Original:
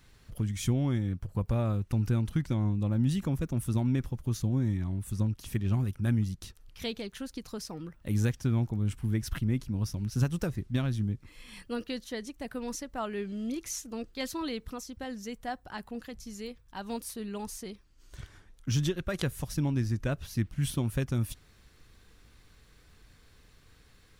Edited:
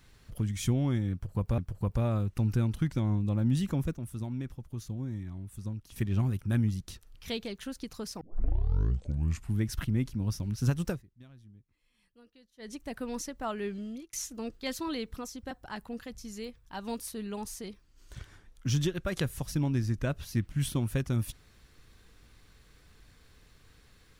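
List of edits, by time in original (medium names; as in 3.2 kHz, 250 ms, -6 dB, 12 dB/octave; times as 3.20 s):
1.12–1.58 s: loop, 2 plays
3.49–5.50 s: gain -8 dB
7.75 s: tape start 1.38 s
10.43–12.26 s: dip -24 dB, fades 0.14 s
13.27–13.67 s: fade out
15.05–15.53 s: delete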